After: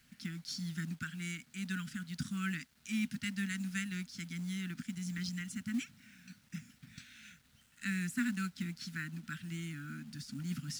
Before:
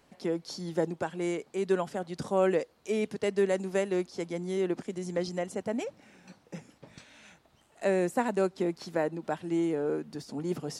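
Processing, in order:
Chebyshev band-stop filter 250–1,400 Hz, order 4
log-companded quantiser 6 bits

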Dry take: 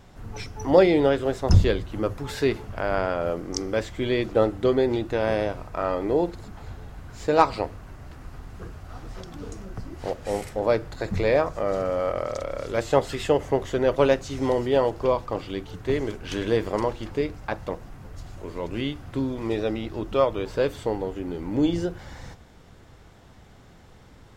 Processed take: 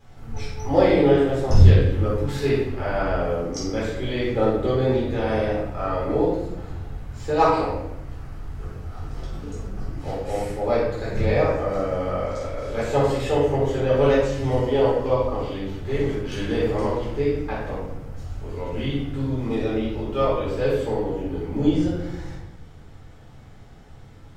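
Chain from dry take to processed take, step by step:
rectangular room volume 300 cubic metres, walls mixed, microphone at 4 metres
level −10 dB

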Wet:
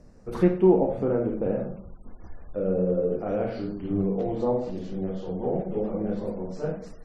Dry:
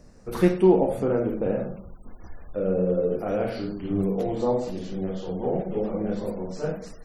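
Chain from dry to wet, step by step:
treble cut that deepens with the level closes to 2,700 Hz, closed at −18 dBFS
tilt shelving filter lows +3.5 dB, about 1,500 Hz
level −4 dB

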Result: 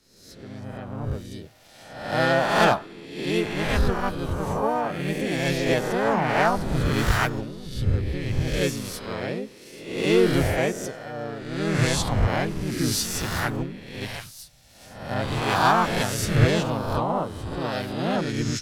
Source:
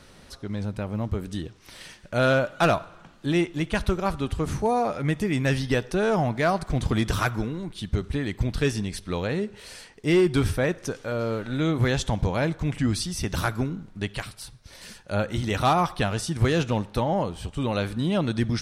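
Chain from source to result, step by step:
peak hold with a rise ahead of every peak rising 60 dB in 1.39 s
pitch-shifted copies added +4 semitones −1 dB
multiband upward and downward expander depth 70%
level −5 dB

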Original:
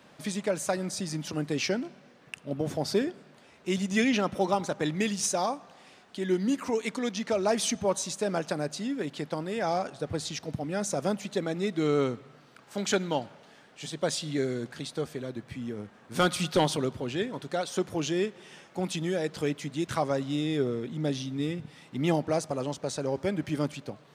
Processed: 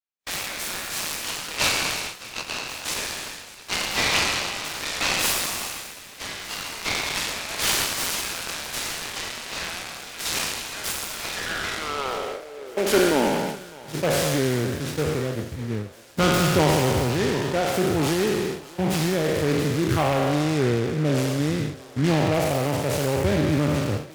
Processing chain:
peak hold with a decay on every bin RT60 1.87 s
noise gate −32 dBFS, range −50 dB
in parallel at +0.5 dB: brickwall limiter −18.5 dBFS, peak gain reduction 11 dB
on the sum: parametric band 65 Hz +12 dB 1.2 octaves
feedback echo with a high-pass in the loop 607 ms, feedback 65%, high-pass 420 Hz, level −18 dB
high-pass filter sweep 2,600 Hz → 89 Hz, 0:11.11–0:14.03
short delay modulated by noise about 1,500 Hz, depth 0.068 ms
level −3 dB

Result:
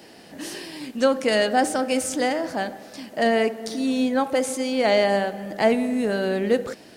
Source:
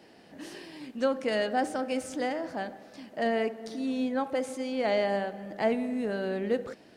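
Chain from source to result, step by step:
high-shelf EQ 5,100 Hz +10.5 dB
level +7.5 dB

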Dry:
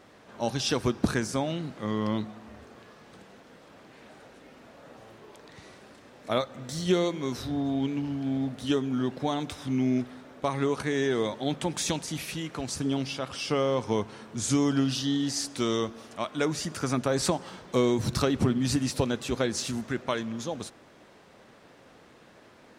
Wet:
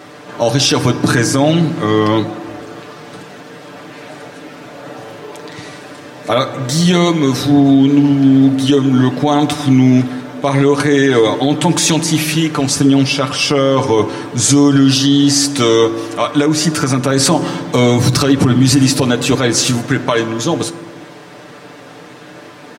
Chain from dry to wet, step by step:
high-pass filter 92 Hz
comb filter 6.8 ms, depth 68%
0:16.40–0:17.05: downward compressor, threshold −25 dBFS, peak gain reduction 7 dB
on a send at −13.5 dB: convolution reverb RT60 1.4 s, pre-delay 3 ms
on the sum: boost into a limiter +18 dB
level −1 dB

